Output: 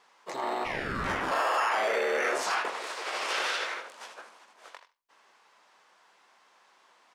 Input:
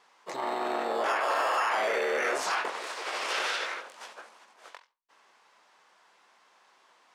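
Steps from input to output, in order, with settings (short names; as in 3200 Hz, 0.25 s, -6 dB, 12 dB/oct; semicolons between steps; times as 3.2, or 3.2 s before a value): 0.64–1.3 ring modulator 1700 Hz -> 290 Hz; echo 80 ms -12.5 dB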